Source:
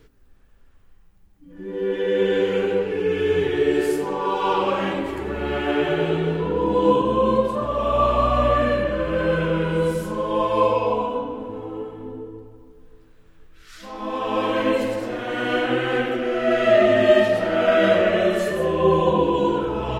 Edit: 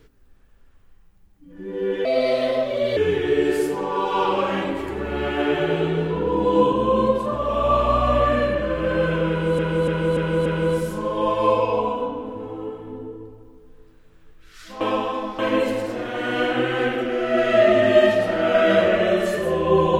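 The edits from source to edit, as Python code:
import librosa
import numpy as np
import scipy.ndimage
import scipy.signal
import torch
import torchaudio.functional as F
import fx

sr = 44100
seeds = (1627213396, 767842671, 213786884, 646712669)

y = fx.edit(x, sr, fx.speed_span(start_s=2.05, length_s=1.21, speed=1.32),
    fx.repeat(start_s=9.59, length_s=0.29, count=5),
    fx.reverse_span(start_s=13.94, length_s=0.58), tone=tone)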